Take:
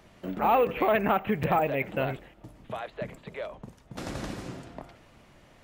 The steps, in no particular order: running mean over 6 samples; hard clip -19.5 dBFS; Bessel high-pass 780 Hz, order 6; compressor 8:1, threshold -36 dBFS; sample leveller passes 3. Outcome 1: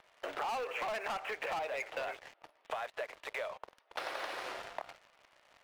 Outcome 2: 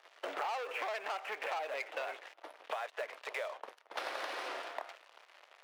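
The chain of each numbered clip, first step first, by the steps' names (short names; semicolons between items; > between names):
running mean > hard clip > Bessel high-pass > sample leveller > compressor; running mean > sample leveller > Bessel high-pass > compressor > hard clip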